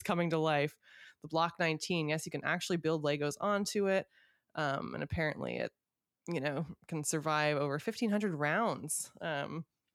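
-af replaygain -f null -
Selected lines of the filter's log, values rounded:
track_gain = +15.0 dB
track_peak = 0.105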